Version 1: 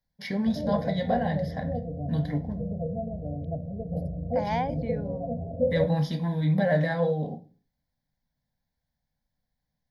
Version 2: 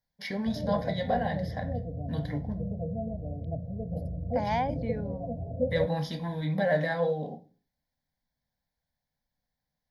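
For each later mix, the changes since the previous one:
first voice: add low shelf 190 Hz -11.5 dB; background: send off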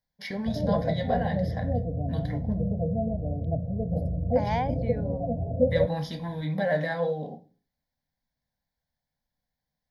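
background +6.0 dB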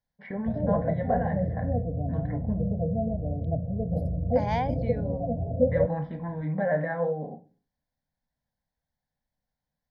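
first voice: add LPF 1800 Hz 24 dB/oct

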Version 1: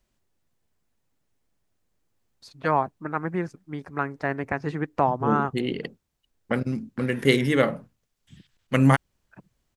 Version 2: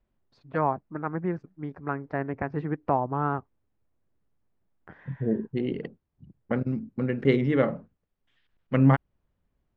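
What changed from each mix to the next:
first voice: entry -2.10 s; master: add tape spacing loss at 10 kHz 39 dB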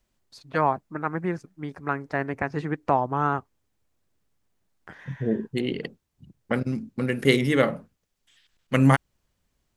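master: remove tape spacing loss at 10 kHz 39 dB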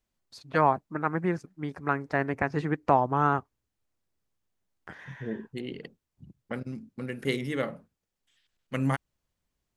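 second voice -9.5 dB

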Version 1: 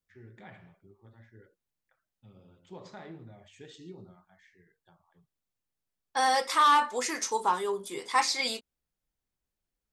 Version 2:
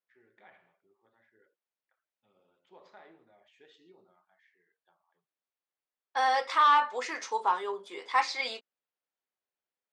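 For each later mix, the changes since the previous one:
first voice -5.5 dB; master: add BPF 480–3400 Hz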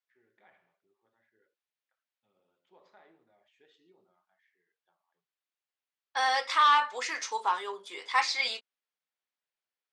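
first voice -5.5 dB; second voice: add tilt shelf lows -6 dB, about 1200 Hz

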